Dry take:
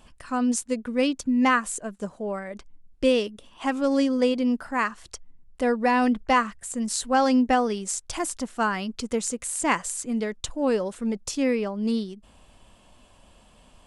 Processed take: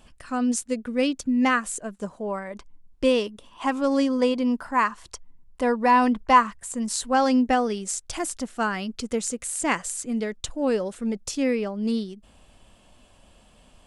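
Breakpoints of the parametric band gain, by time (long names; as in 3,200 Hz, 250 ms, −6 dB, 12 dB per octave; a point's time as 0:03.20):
parametric band 1,000 Hz 0.34 octaves
0:01.68 −4 dB
0:02.31 +7.5 dB
0:06.47 +7.5 dB
0:07.72 −4 dB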